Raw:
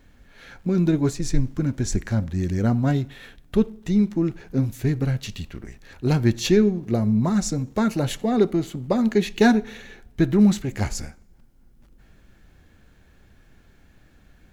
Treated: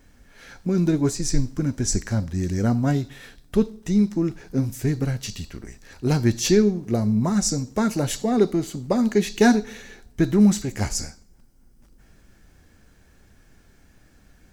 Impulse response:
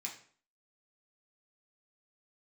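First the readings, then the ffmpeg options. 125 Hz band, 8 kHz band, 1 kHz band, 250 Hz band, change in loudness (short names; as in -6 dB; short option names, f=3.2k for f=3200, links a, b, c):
-1.0 dB, +6.0 dB, 0.0 dB, 0.0 dB, 0.0 dB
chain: -filter_complex "[0:a]asplit=2[a][b];[b]highshelf=f=3.2k:t=q:w=3:g=14[c];[1:a]atrim=start_sample=2205,asetrate=48510,aresample=44100[d];[c][d]afir=irnorm=-1:irlink=0,volume=-13.5dB[e];[a][e]amix=inputs=2:normalize=0"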